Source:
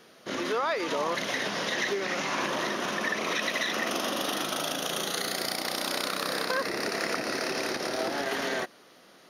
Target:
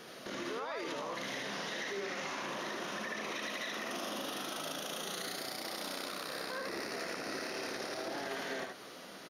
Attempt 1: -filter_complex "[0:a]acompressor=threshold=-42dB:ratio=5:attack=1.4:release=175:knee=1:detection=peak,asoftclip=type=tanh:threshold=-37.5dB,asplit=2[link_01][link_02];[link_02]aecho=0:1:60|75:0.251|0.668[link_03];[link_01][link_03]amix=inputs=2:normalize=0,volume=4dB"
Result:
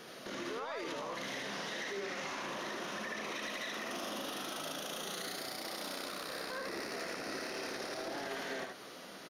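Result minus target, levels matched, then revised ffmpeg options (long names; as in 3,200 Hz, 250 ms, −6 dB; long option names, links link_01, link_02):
soft clipping: distortion +13 dB
-filter_complex "[0:a]acompressor=threshold=-42dB:ratio=5:attack=1.4:release=175:knee=1:detection=peak,asoftclip=type=tanh:threshold=-29.5dB,asplit=2[link_01][link_02];[link_02]aecho=0:1:60|75:0.251|0.668[link_03];[link_01][link_03]amix=inputs=2:normalize=0,volume=4dB"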